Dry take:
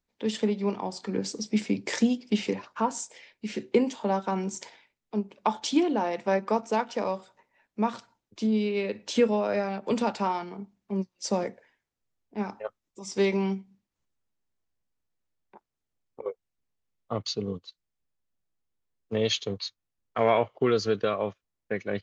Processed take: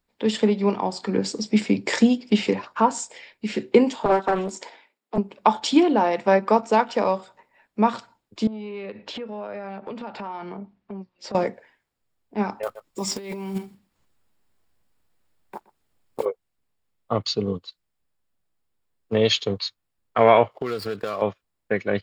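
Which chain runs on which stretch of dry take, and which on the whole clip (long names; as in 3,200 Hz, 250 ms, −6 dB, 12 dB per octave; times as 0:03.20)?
0:04.05–0:05.18: Bessel high-pass filter 320 Hz, order 6 + tilt shelving filter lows +3.5 dB + highs frequency-modulated by the lows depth 0.76 ms
0:08.47–0:11.35: low-pass filter 3,400 Hz + downward compressor 8 to 1, threshold −37 dBFS + saturating transformer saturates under 380 Hz
0:12.63–0:16.27: one scale factor per block 5 bits + single-tap delay 122 ms −22 dB + compressor whose output falls as the input rises −36 dBFS
0:20.51–0:21.22: running median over 15 samples + tilt shelving filter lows −3.5 dB, about 1,300 Hz + downward compressor 5 to 1, threshold −31 dBFS
whole clip: parametric band 980 Hz +2.5 dB 1.9 octaves; notch filter 6,100 Hz, Q 6.2; level +6 dB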